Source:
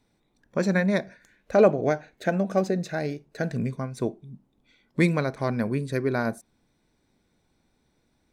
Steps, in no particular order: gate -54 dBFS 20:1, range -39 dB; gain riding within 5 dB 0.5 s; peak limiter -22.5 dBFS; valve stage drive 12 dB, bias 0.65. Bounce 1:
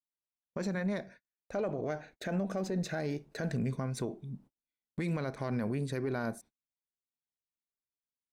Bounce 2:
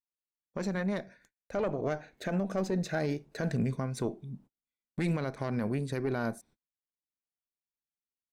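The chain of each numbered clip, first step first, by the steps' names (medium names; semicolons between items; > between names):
gain riding > peak limiter > valve stage > gate; gate > valve stage > gain riding > peak limiter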